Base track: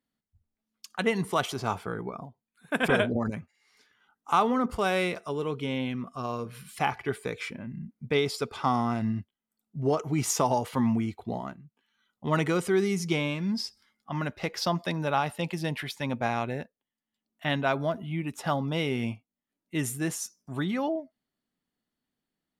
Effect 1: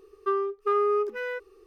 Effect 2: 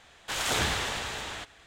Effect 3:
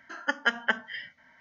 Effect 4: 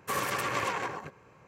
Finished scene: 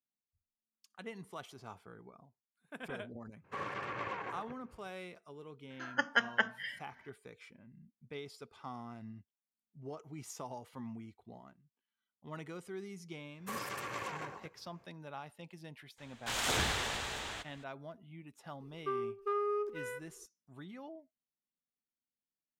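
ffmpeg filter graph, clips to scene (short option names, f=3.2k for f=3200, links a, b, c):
-filter_complex "[4:a]asplit=2[a][b];[0:a]volume=-19.5dB[c];[a]lowpass=2.7k[d];[1:a]asplit=2[e][f];[f]adelay=106,lowpass=f=1.3k:p=1,volume=-19dB,asplit=2[g][h];[h]adelay=106,lowpass=f=1.3k:p=1,volume=0.52,asplit=2[i][j];[j]adelay=106,lowpass=f=1.3k:p=1,volume=0.52,asplit=2[k][l];[l]adelay=106,lowpass=f=1.3k:p=1,volume=0.52[m];[e][g][i][k][m]amix=inputs=5:normalize=0[n];[d]atrim=end=1.47,asetpts=PTS-STARTPTS,volume=-8.5dB,afade=t=in:d=0.004:c=hsin,afade=t=out:st=1.466:d=0.004:c=hsin,adelay=3440[o];[3:a]atrim=end=1.4,asetpts=PTS-STARTPTS,volume=-4dB,afade=t=in:d=0.004:c=hsin,afade=t=out:st=1.396:d=0.004:c=hsin,adelay=5700[p];[b]atrim=end=1.47,asetpts=PTS-STARTPTS,volume=-10dB,afade=t=in:d=0.004:c=hsin,afade=t=out:st=1.466:d=0.004:c=hsin,adelay=13390[q];[2:a]atrim=end=1.66,asetpts=PTS-STARTPTS,volume=-4.5dB,afade=t=in:d=0.004:c=hsin,afade=t=out:st=1.656:d=0.004:c=hsin,adelay=15980[r];[n]atrim=end=1.66,asetpts=PTS-STARTPTS,volume=-10dB,afade=t=in:d=0.004:c=hsin,afade=t=out:st=1.656:d=0.004:c=hsin,adelay=820260S[s];[c][o][p][q][r][s]amix=inputs=6:normalize=0"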